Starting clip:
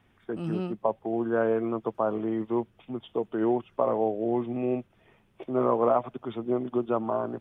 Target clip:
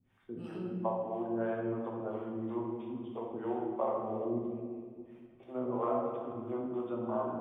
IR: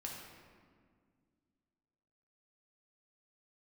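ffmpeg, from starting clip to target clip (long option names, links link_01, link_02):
-filter_complex "[0:a]asettb=1/sr,asplit=3[link_01][link_02][link_03];[link_01]atrim=end=4.384[link_04];[link_02]atrim=start=4.38:end=5.43,asetpts=PTS-STARTPTS,afade=type=in:duration=0.004:curve=qsin,afade=type=out:start_time=1.046:duration=0.004:curve=qsin,acompressor=threshold=-41dB:ratio=6[link_05];[link_03]atrim=start=5.426[link_06];[link_04][link_05]acrossfade=duration=0.004:curve1=hsin:curve2=qsin[link_07];[link_07][link_06]acrossfade=duration=0.004:curve1=qsin:curve2=hsin,acrossover=split=400[link_08][link_09];[link_08]aeval=exprs='val(0)*(1-1/2+1/2*cos(2*PI*3*n/s))':channel_layout=same[link_10];[link_09]aeval=exprs='val(0)*(1-1/2-1/2*cos(2*PI*3*n/s))':channel_layout=same[link_11];[link_10][link_11]amix=inputs=2:normalize=0[link_12];[1:a]atrim=start_sample=2205[link_13];[link_12][link_13]afir=irnorm=-1:irlink=0,volume=-2dB"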